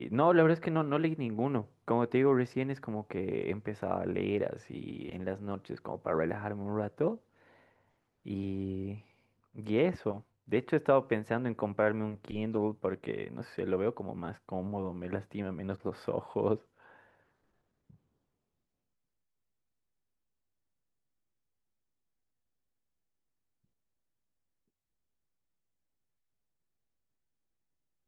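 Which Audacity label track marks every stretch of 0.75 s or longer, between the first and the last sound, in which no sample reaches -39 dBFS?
7.150000	8.260000	silence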